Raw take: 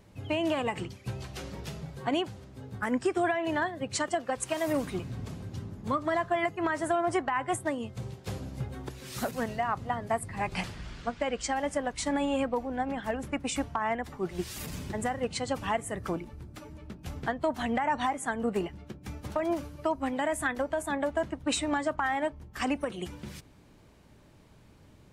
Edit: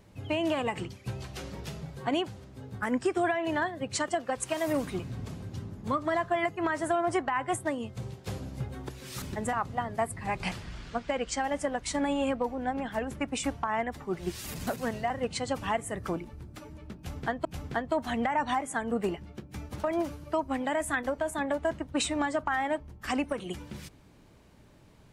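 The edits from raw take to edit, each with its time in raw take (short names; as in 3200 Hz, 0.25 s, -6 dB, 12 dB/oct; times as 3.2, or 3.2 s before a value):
9.22–9.65 swap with 14.79–15.1
16.97–17.45 loop, 2 plays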